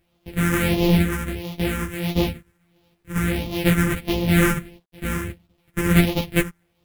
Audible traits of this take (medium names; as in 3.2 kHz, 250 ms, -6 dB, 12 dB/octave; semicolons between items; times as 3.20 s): a buzz of ramps at a fixed pitch in blocks of 256 samples; phasing stages 4, 1.5 Hz, lowest notch 700–1500 Hz; a quantiser's noise floor 12-bit, dither none; a shimmering, thickened sound